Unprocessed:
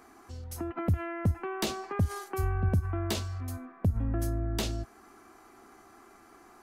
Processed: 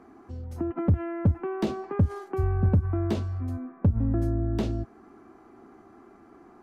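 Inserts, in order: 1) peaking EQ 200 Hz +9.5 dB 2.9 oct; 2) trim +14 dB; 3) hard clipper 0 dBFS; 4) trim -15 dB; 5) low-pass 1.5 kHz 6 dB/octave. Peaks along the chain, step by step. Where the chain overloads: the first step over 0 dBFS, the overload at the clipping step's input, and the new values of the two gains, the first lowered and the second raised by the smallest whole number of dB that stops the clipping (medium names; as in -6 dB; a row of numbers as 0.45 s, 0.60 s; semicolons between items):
-9.0 dBFS, +5.0 dBFS, 0.0 dBFS, -15.0 dBFS, -15.0 dBFS; step 2, 5.0 dB; step 2 +9 dB, step 4 -10 dB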